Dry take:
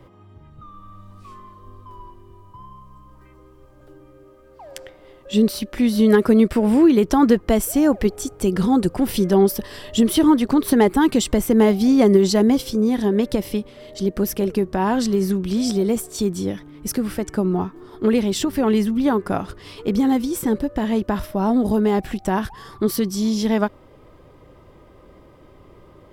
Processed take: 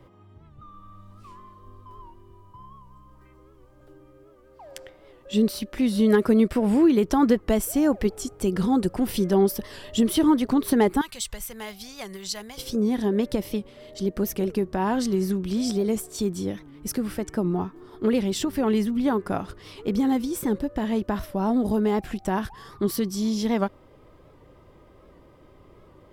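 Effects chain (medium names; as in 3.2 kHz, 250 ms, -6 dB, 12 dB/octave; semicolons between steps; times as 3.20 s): 11.01–12.58 s: amplifier tone stack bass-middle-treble 10-0-10; warped record 78 rpm, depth 100 cents; trim -4.5 dB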